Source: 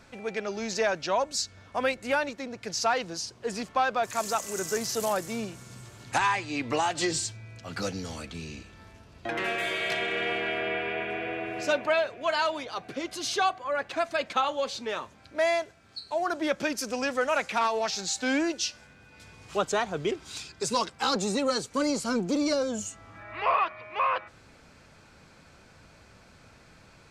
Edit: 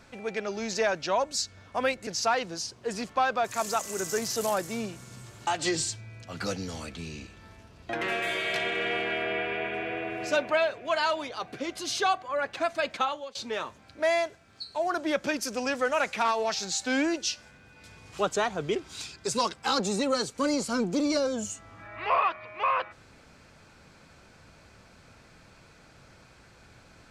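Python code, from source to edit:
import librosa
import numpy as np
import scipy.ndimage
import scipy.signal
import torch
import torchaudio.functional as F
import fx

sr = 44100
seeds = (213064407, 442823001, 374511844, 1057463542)

y = fx.edit(x, sr, fx.cut(start_s=2.07, length_s=0.59),
    fx.cut(start_s=6.06, length_s=0.77),
    fx.fade_out_to(start_s=14.32, length_s=0.39, floor_db=-23.5), tone=tone)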